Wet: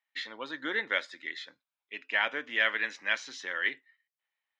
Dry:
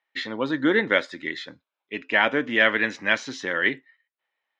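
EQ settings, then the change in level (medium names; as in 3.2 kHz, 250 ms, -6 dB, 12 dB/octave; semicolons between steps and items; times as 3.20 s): high-pass 1.4 kHz 6 dB/octave; -5.0 dB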